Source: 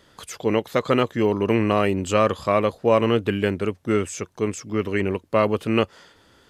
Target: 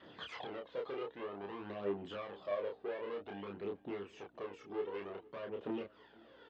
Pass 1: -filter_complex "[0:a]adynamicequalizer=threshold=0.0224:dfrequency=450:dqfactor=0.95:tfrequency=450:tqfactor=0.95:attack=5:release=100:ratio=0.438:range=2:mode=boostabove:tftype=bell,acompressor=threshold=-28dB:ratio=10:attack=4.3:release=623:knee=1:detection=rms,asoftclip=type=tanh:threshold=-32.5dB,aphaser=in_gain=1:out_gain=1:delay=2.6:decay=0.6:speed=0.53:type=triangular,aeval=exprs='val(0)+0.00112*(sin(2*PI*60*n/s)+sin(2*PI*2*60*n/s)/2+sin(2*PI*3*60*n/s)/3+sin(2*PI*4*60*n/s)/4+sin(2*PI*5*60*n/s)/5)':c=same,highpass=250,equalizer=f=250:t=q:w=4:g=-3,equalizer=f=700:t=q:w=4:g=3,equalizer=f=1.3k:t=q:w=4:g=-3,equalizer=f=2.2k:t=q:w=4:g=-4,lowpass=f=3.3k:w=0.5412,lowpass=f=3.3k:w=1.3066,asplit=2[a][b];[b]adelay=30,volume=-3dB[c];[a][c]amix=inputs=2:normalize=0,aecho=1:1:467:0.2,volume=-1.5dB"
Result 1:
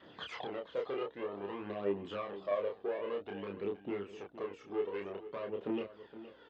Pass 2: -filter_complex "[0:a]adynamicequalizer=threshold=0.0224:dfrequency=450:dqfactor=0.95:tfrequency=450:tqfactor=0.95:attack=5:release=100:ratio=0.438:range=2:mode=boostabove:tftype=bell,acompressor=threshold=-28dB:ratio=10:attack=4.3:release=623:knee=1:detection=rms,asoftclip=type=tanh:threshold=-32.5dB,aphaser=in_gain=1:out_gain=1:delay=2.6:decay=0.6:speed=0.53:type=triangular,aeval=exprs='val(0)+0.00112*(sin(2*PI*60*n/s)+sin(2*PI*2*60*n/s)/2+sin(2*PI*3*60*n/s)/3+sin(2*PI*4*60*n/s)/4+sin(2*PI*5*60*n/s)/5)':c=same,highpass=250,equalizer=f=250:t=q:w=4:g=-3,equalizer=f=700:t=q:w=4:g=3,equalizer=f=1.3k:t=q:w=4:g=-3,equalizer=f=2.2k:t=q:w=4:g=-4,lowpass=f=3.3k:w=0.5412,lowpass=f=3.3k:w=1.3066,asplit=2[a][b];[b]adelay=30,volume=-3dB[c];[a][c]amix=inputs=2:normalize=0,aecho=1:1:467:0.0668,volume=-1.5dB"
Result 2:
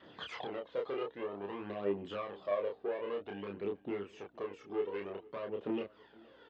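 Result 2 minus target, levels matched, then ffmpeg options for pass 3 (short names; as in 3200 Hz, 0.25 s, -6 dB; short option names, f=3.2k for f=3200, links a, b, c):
soft clip: distortion -4 dB
-filter_complex "[0:a]adynamicequalizer=threshold=0.0224:dfrequency=450:dqfactor=0.95:tfrequency=450:tqfactor=0.95:attack=5:release=100:ratio=0.438:range=2:mode=boostabove:tftype=bell,acompressor=threshold=-28dB:ratio=10:attack=4.3:release=623:knee=1:detection=rms,asoftclip=type=tanh:threshold=-38.5dB,aphaser=in_gain=1:out_gain=1:delay=2.6:decay=0.6:speed=0.53:type=triangular,aeval=exprs='val(0)+0.00112*(sin(2*PI*60*n/s)+sin(2*PI*2*60*n/s)/2+sin(2*PI*3*60*n/s)/3+sin(2*PI*4*60*n/s)/4+sin(2*PI*5*60*n/s)/5)':c=same,highpass=250,equalizer=f=250:t=q:w=4:g=-3,equalizer=f=700:t=q:w=4:g=3,equalizer=f=1.3k:t=q:w=4:g=-3,equalizer=f=2.2k:t=q:w=4:g=-4,lowpass=f=3.3k:w=0.5412,lowpass=f=3.3k:w=1.3066,asplit=2[a][b];[b]adelay=30,volume=-3dB[c];[a][c]amix=inputs=2:normalize=0,aecho=1:1:467:0.0668,volume=-1.5dB"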